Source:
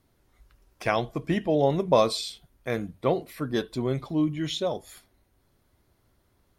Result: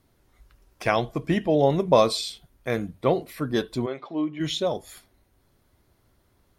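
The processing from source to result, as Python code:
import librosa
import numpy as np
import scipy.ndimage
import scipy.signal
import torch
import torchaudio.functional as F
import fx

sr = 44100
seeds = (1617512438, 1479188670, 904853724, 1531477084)

y = fx.bandpass_edges(x, sr, low_hz=fx.line((3.85, 530.0), (4.39, 290.0)), high_hz=2900.0, at=(3.85, 4.39), fade=0.02)
y = y * 10.0 ** (2.5 / 20.0)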